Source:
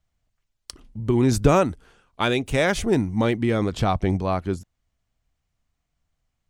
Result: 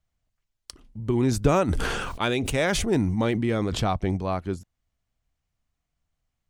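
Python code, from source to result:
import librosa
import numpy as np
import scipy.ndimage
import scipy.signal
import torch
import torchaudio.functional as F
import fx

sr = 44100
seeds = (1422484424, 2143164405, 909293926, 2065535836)

y = fx.sustainer(x, sr, db_per_s=27.0, at=(1.67, 3.92), fade=0.02)
y = y * 10.0 ** (-3.5 / 20.0)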